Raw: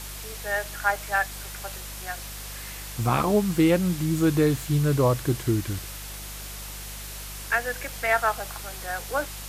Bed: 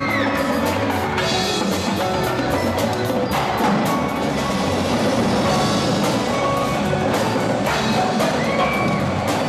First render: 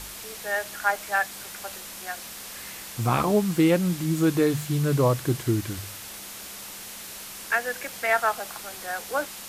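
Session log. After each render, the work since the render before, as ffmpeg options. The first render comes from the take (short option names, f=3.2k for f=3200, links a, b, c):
-af "bandreject=f=50:t=h:w=4,bandreject=f=100:t=h:w=4,bandreject=f=150:t=h:w=4"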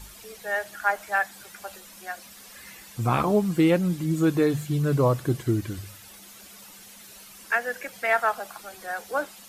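-af "afftdn=nr=11:nf=-40"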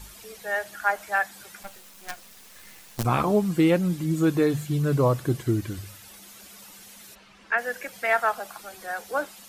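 -filter_complex "[0:a]asettb=1/sr,asplit=3[a][b][c];[a]atrim=end=1.634[d];[b]atrim=start=1.63:end=3.05,asetpts=PTS-STARTPTS,afade=t=in:d=0.004:c=qsin,afade=t=out:st=1.416:d=0.004:c=qsin,acrusher=bits=5:dc=4:mix=0:aa=0.000001[e];[c]atrim=start=3.046[f];[d][e]acrossfade=d=0.004:c1=hsin:c2=qsin[g];[g][f]acrossfade=d=0.004:c1=qsin:c2=hsin,asplit=3[h][i][j];[h]afade=t=out:st=7.14:d=0.02[k];[i]lowpass=3.1k,afade=t=in:st=7.14:d=0.02,afade=t=out:st=7.57:d=0.02[l];[j]afade=t=in:st=7.57:d=0.02[m];[k][l][m]amix=inputs=3:normalize=0"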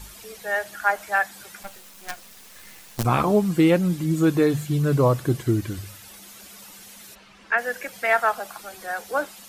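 -af "volume=2.5dB"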